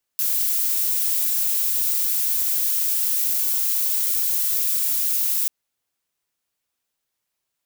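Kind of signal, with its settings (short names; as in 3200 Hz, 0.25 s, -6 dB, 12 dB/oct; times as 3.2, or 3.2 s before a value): noise violet, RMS -21.5 dBFS 5.29 s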